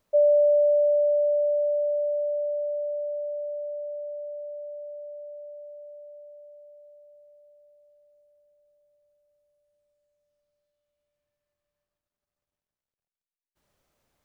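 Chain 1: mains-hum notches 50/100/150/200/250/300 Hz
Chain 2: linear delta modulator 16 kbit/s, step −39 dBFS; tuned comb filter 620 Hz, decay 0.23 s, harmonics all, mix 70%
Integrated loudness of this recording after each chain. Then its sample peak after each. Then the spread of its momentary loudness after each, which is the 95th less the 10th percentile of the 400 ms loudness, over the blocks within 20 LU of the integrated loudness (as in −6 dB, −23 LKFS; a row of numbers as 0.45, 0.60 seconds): −25.0, −39.5 LKFS; −14.5, −30.5 dBFS; 22, 18 LU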